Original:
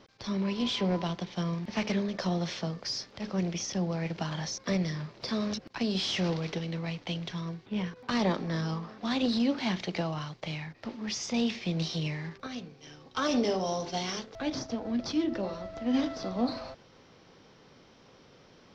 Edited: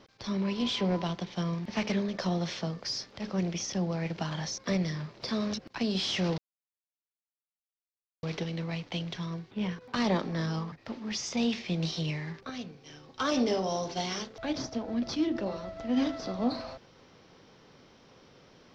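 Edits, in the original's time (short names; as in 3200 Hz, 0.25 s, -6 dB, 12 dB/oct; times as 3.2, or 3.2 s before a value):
6.38 insert silence 1.85 s
8.87–10.69 cut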